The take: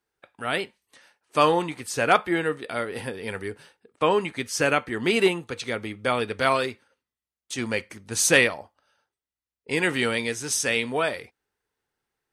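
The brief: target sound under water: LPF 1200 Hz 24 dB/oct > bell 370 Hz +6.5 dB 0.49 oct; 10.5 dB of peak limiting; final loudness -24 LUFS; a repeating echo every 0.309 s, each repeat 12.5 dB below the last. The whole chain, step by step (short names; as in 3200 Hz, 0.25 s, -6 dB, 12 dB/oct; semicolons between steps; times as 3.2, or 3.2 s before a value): limiter -14.5 dBFS; LPF 1200 Hz 24 dB/oct; bell 370 Hz +6.5 dB 0.49 oct; feedback echo 0.309 s, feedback 24%, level -12.5 dB; gain +4 dB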